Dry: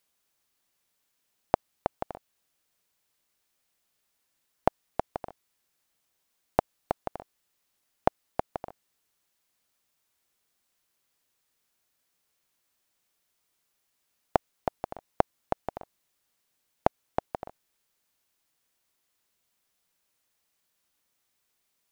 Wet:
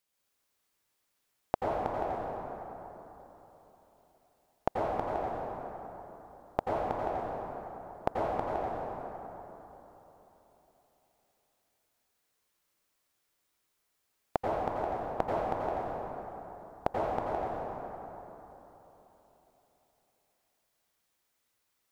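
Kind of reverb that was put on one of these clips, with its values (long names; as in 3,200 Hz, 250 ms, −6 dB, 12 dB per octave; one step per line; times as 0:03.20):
dense smooth reverb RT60 3.7 s, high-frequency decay 0.5×, pre-delay 75 ms, DRR −6 dB
level −7 dB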